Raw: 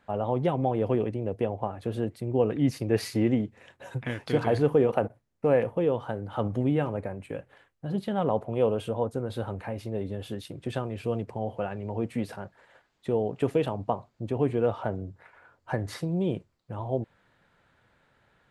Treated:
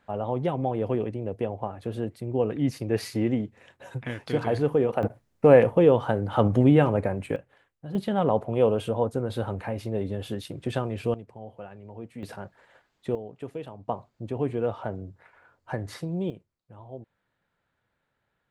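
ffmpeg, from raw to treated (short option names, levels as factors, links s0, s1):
-af "asetnsamples=n=441:p=0,asendcmd='5.03 volume volume 7.5dB;7.36 volume volume -4.5dB;7.95 volume volume 3dB;11.14 volume volume -10dB;12.23 volume volume 0dB;13.15 volume volume -11dB;13.88 volume volume -2dB;16.3 volume volume -12dB',volume=0.891"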